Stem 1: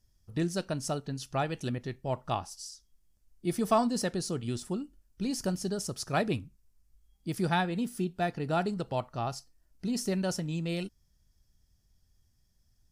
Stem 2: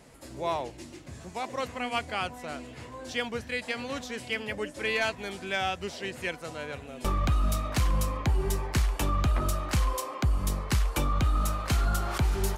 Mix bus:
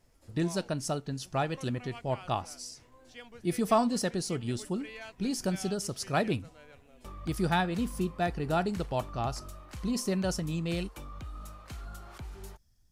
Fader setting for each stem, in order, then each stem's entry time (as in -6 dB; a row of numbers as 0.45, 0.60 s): +0.5, -17.0 dB; 0.00, 0.00 s